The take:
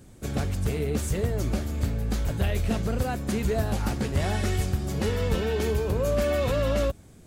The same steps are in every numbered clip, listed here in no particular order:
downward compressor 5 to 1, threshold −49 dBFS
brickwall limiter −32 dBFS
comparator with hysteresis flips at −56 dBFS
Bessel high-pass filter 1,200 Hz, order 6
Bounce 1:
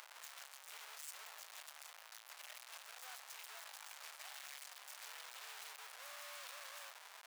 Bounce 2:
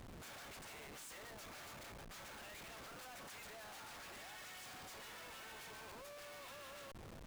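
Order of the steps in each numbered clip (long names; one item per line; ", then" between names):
comparator with hysteresis, then downward compressor, then Bessel high-pass filter, then brickwall limiter
brickwall limiter, then Bessel high-pass filter, then comparator with hysteresis, then downward compressor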